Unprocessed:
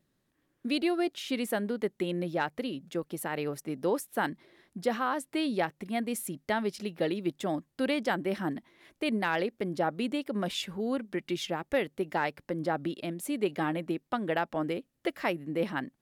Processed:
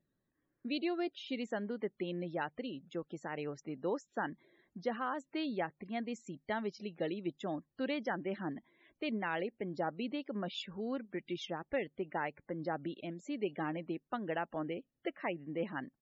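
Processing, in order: downsampling 16000 Hz; loudest bins only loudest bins 64; gain -7 dB

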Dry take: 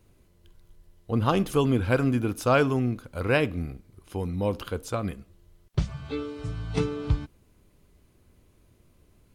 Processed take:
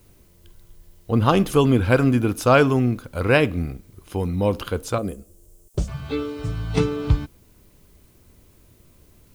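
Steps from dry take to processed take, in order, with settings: added noise blue -68 dBFS; 4.98–5.88 graphic EQ 125/500/1000/2000/4000/8000 Hz -10/+5/-7/-12/-8/+8 dB; gain +6 dB

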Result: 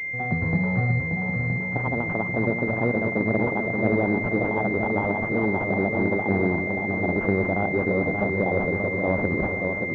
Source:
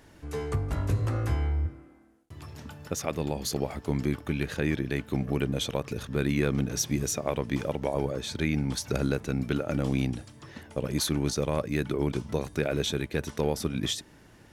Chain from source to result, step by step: speed glide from 170% -> 122%; swung echo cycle 0.969 s, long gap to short 1.5:1, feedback 51%, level -5 dB; pulse-width modulation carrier 2100 Hz; gain +3.5 dB

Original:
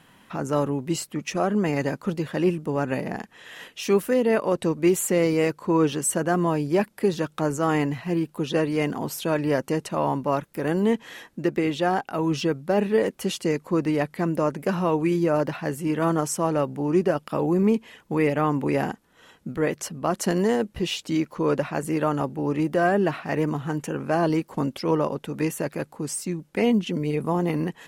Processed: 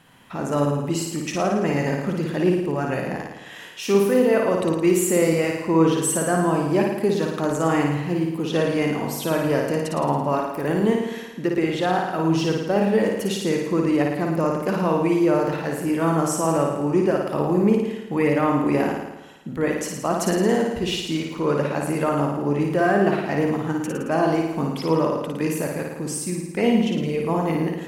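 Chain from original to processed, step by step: flutter echo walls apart 9.5 m, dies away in 0.98 s

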